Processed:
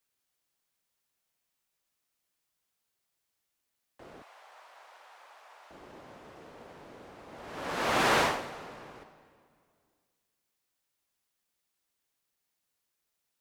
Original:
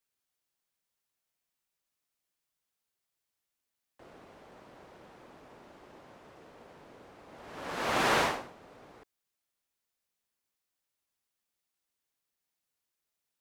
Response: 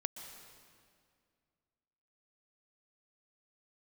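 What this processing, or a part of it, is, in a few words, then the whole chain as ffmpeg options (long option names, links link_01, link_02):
saturated reverb return: -filter_complex "[0:a]asplit=2[link_01][link_02];[1:a]atrim=start_sample=2205[link_03];[link_02][link_03]afir=irnorm=-1:irlink=0,asoftclip=type=tanh:threshold=-33dB,volume=-4.5dB[link_04];[link_01][link_04]amix=inputs=2:normalize=0,asettb=1/sr,asplit=3[link_05][link_06][link_07];[link_05]atrim=end=4.224[link_08];[link_06]atrim=start=4.22:end=5.71,asetpts=PTS-STARTPTS,afade=type=in:duration=0.004:curve=qsin,afade=type=out:start_time=1.486:duration=0.004:curve=qsin,highpass=frequency=720:width=0.5412,highpass=frequency=720:width=1.3066[link_09];[link_07]atrim=start=5.706[link_10];[link_08][link_09]acrossfade=duration=0.004:curve1=hsin:curve2=qsin[link_11];[link_11][link_10]acrossfade=duration=0.004:curve1=qsin:curve2=hsin"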